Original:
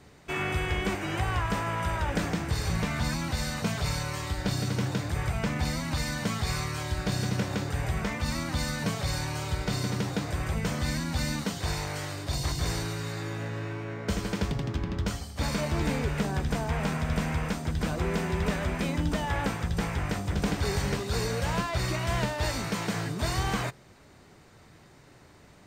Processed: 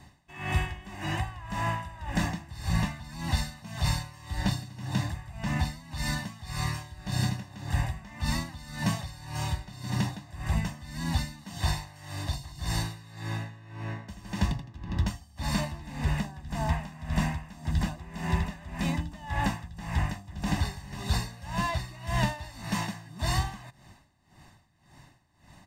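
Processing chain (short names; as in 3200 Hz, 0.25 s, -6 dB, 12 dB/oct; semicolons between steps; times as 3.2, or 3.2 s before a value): comb 1.1 ms, depth 79%; dB-linear tremolo 1.8 Hz, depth 19 dB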